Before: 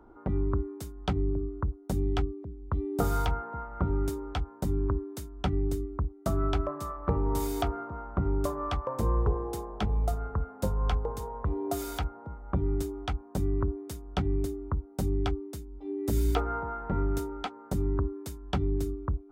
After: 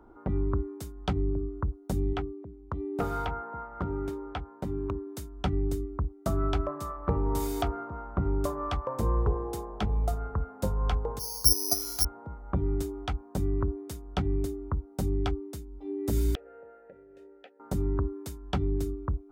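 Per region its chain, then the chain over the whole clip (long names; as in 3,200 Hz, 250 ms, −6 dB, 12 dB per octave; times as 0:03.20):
0:02.13–0:05.07: high-pass filter 76 Hz 6 dB per octave + bass and treble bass −3 dB, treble −13 dB + hard clipping −22 dBFS
0:11.19–0:12.05: noise gate −29 dBFS, range −8 dB + bad sample-rate conversion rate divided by 8×, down filtered, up zero stuff + one half of a high-frequency compander decoder only
0:16.35–0:17.60: downward compressor 10 to 1, threshold −29 dBFS + formant filter e
whole clip: no processing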